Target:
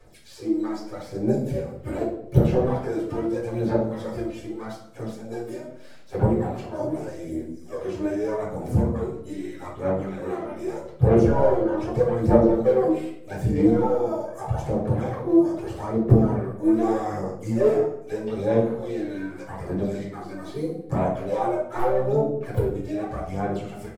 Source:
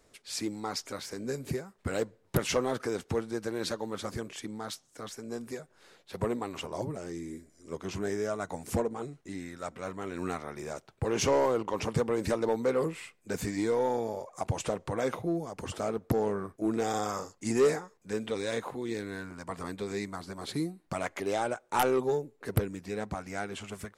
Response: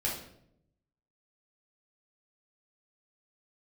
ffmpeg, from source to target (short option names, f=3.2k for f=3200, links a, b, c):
-filter_complex "[0:a]acrossover=split=250|1100[a][b][c];[a]asplit=2[d][e];[e]adelay=32,volume=-10dB[f];[d][f]amix=inputs=2:normalize=0[g];[c]acompressor=threshold=-53dB:ratio=5[h];[g][b][h]amix=inputs=3:normalize=0,asplit=2[i][j];[j]asetrate=66075,aresample=44100,atempo=0.66742,volume=-9dB[k];[i][k]amix=inputs=2:normalize=0,aphaser=in_gain=1:out_gain=1:delay=3.3:decay=0.71:speed=0.81:type=sinusoidal[l];[1:a]atrim=start_sample=2205[m];[l][m]afir=irnorm=-1:irlink=0,volume=-3.5dB"